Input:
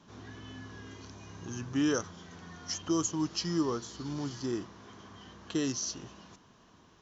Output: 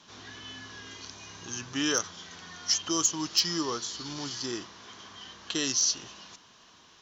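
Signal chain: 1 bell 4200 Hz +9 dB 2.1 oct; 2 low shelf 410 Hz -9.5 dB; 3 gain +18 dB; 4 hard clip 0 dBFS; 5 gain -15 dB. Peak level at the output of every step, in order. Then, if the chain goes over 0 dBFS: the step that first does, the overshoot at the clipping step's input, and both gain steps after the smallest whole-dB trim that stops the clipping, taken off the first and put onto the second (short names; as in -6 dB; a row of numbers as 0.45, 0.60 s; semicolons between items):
-12.0, -12.0, +6.0, 0.0, -15.0 dBFS; step 3, 6.0 dB; step 3 +12 dB, step 5 -9 dB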